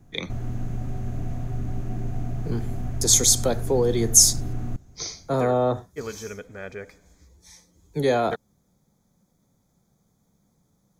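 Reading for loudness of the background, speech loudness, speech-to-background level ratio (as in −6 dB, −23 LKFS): −32.5 LKFS, −21.0 LKFS, 11.5 dB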